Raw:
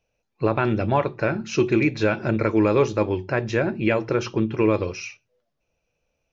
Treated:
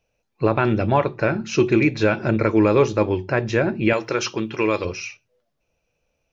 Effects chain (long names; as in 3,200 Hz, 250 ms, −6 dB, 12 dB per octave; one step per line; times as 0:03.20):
0:03.93–0:04.85: spectral tilt +3 dB per octave
level +2.5 dB